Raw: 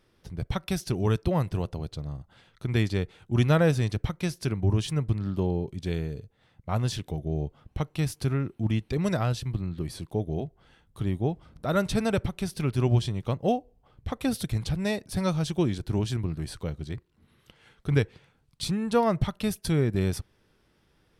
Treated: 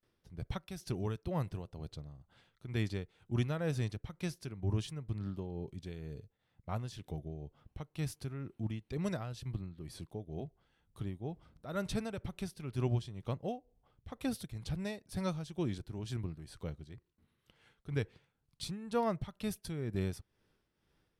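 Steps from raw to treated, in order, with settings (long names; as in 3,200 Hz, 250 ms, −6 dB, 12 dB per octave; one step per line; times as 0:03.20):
noise gate with hold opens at −57 dBFS
amplitude tremolo 2.1 Hz, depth 60%
level −8.5 dB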